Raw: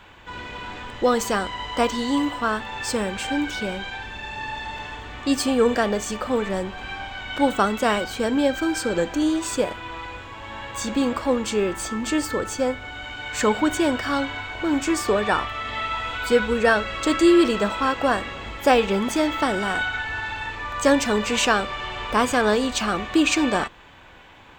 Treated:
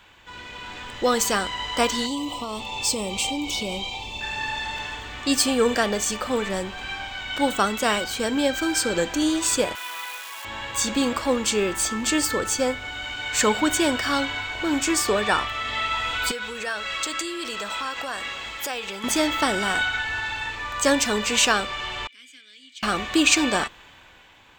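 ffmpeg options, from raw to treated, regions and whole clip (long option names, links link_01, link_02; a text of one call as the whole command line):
ffmpeg -i in.wav -filter_complex "[0:a]asettb=1/sr,asplit=3[link_01][link_02][link_03];[link_01]atrim=end=2.064[link_04];[link_02]atrim=start=2.06:end=4.21,asetpts=PTS-STARTPTS,afade=type=in:duration=0.004:curve=qsin,afade=type=out:start_time=2.146:duration=0.004:curve=qsin,acompressor=threshold=-24dB:ratio=4:attack=3.2:release=140:knee=1:detection=peak,asuperstop=centerf=1600:order=4:qfactor=1.3[link_05];[link_03]atrim=start=4.206[link_06];[link_04][link_05]acrossfade=duration=0.004:curve1=hsin:curve2=qsin[link_07];[link_07][link_06]acrossfade=duration=0.004:curve1=qsin:curve2=hsin,asettb=1/sr,asplit=3[link_08][link_09][link_10];[link_08]atrim=end=9.754[link_11];[link_09]atrim=start=9.75:end=10.45,asetpts=PTS-STARTPTS,afade=type=in:duration=0.004:curve=qsin,afade=type=out:start_time=0.696:duration=0.004:curve=qsin,acrusher=bits=8:dc=4:mix=0:aa=0.000001,highpass=820[link_12];[link_10]atrim=start=10.446[link_13];[link_11][link_12]acrossfade=duration=0.004:curve1=hsin:curve2=qsin[link_14];[link_14][link_13]acrossfade=duration=0.004:curve1=qsin:curve2=hsin,asettb=1/sr,asplit=3[link_15][link_16][link_17];[link_15]atrim=end=16.314[link_18];[link_16]atrim=start=16.31:end=19.04,asetpts=PTS-STARTPTS,afade=type=in:duration=0.004:curve=qsin,afade=type=out:start_time=2.726:duration=0.004:curve=qsin,acompressor=threshold=-27dB:ratio=3:attack=3.2:release=140:knee=1:detection=peak,lowshelf=frequency=480:gain=-11.5[link_19];[link_17]atrim=start=19.036[link_20];[link_18][link_19]acrossfade=duration=0.004:curve1=hsin:curve2=qsin[link_21];[link_21][link_20]acrossfade=duration=0.004:curve1=qsin:curve2=hsin,asettb=1/sr,asplit=3[link_22][link_23][link_24];[link_22]atrim=end=22.074[link_25];[link_23]atrim=start=22.07:end=22.83,asetpts=PTS-STARTPTS,afade=type=in:duration=0.004:curve=qsin,afade=type=out:start_time=0.756:duration=0.004:curve=qsin,asplit=3[link_26][link_27][link_28];[link_26]bandpass=frequency=270:width_type=q:width=8,volume=0dB[link_29];[link_27]bandpass=frequency=2290:width_type=q:width=8,volume=-6dB[link_30];[link_28]bandpass=frequency=3010:width_type=q:width=8,volume=-9dB[link_31];[link_29][link_30][link_31]amix=inputs=3:normalize=0,aderivative[link_32];[link_24]atrim=start=22.826[link_33];[link_25][link_32]acrossfade=duration=0.004:curve1=hsin:curve2=qsin[link_34];[link_34][link_33]acrossfade=duration=0.004:curve1=qsin:curve2=hsin,dynaudnorm=framelen=120:gausssize=13:maxgain=7.5dB,highshelf=frequency=2200:gain=10,volume=-8dB" out.wav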